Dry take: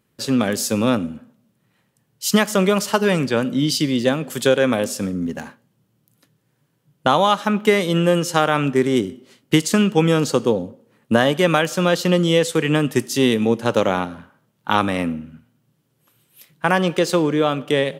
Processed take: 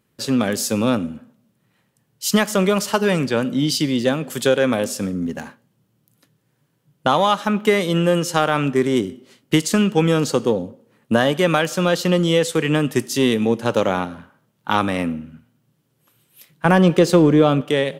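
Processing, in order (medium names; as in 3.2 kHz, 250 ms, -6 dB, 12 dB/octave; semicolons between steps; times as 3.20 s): 16.65–17.61 s: bass shelf 480 Hz +9.5 dB; in parallel at -9 dB: saturation -12.5 dBFS, distortion -11 dB; on the sum: trim -2.5 dB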